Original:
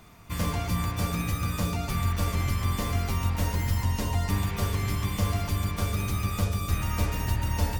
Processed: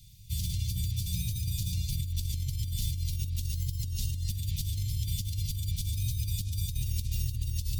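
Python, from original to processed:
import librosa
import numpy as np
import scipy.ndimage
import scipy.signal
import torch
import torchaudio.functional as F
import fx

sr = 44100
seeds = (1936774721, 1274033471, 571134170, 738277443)

y = scipy.signal.sosfilt(scipy.signal.ellip(3, 1.0, 50, [130.0, 3600.0], 'bandstop', fs=sr, output='sos'), x)
y = fx.over_compress(y, sr, threshold_db=-31.0, ratio=-1.0)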